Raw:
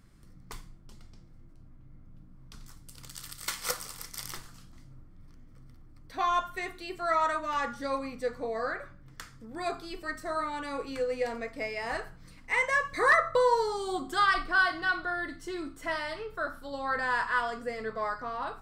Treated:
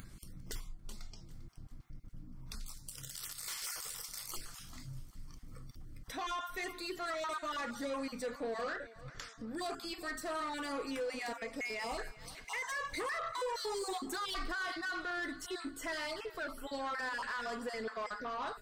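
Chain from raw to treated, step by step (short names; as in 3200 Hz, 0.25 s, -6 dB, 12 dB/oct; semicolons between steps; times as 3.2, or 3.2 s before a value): random spectral dropouts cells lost 20%; high shelf 2500 Hz +9.5 dB; limiter -24 dBFS, peak gain reduction 15.5 dB; soft clip -31.5 dBFS, distortion -13 dB; 8.73–9.47 LPF 7300 Hz 12 dB/oct; spectral noise reduction 10 dB; upward compressor, threshold -39 dBFS; low shelf 320 Hz +6 dB; thinning echo 0.397 s, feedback 47%, high-pass 220 Hz, level -18 dB; gain -3 dB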